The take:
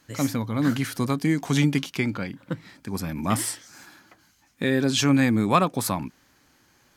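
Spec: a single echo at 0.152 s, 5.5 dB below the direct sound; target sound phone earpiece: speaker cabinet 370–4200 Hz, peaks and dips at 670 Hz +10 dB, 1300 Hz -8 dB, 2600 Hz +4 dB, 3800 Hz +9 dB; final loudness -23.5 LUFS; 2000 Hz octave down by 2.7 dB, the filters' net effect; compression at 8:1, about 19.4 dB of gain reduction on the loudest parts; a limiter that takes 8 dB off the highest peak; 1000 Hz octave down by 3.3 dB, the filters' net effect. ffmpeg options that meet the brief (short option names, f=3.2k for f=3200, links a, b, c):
-af "equalizer=f=1k:t=o:g=-5,equalizer=f=2k:t=o:g=-3.5,acompressor=threshold=-37dB:ratio=8,alimiter=level_in=8.5dB:limit=-24dB:level=0:latency=1,volume=-8.5dB,highpass=370,equalizer=f=670:t=q:w=4:g=10,equalizer=f=1.3k:t=q:w=4:g=-8,equalizer=f=2.6k:t=q:w=4:g=4,equalizer=f=3.8k:t=q:w=4:g=9,lowpass=f=4.2k:w=0.5412,lowpass=f=4.2k:w=1.3066,aecho=1:1:152:0.531,volume=23dB"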